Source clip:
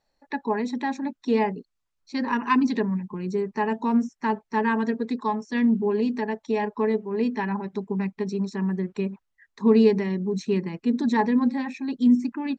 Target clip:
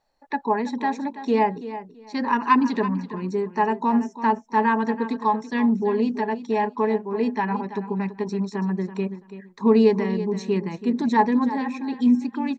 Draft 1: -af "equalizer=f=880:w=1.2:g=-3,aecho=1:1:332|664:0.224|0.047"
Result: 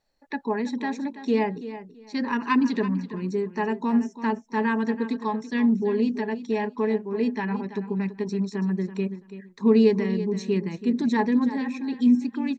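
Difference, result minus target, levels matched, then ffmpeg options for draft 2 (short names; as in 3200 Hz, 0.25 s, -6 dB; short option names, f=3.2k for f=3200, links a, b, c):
1000 Hz band -6.5 dB
-af "equalizer=f=880:w=1.2:g=6,aecho=1:1:332|664:0.224|0.047"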